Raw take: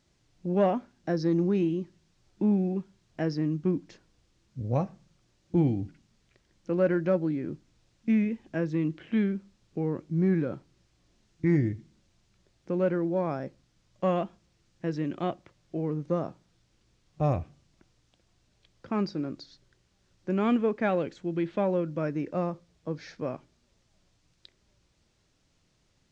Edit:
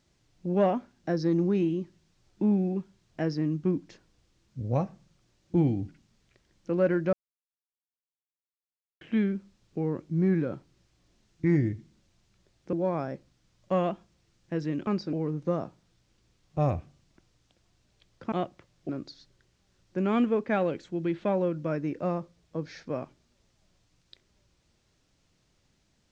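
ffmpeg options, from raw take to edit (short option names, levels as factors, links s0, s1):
-filter_complex "[0:a]asplit=8[s0][s1][s2][s3][s4][s5][s6][s7];[s0]atrim=end=7.13,asetpts=PTS-STARTPTS,afade=t=out:st=7.126:d=0.004:c=hsin[s8];[s1]atrim=start=7.13:end=9.01,asetpts=PTS-STARTPTS,volume=0[s9];[s2]atrim=start=9.01:end=12.732,asetpts=PTS-STARTPTS,afade=t=in:d=0.004:c=hsin[s10];[s3]atrim=start=13.048:end=15.192[s11];[s4]atrim=start=18.948:end=19.212[s12];[s5]atrim=start=15.758:end=18.952[s13];[s6]atrim=start=15.188:end=15.762[s14];[s7]atrim=start=19.208[s15];[s8][s9][s10]concat=n=3:v=0:a=1[s16];[s16][s11]acrossfade=d=0.004:c1=hsin:c2=hsin[s17];[s17][s12]acrossfade=d=0.004:c1=hsin:c2=hsin[s18];[s18][s13]acrossfade=d=0.004:c1=hsin:c2=hsin[s19];[s19][s14]acrossfade=d=0.004:c1=hsin:c2=hsin[s20];[s20][s15]acrossfade=d=0.004:c1=hsin:c2=hsin"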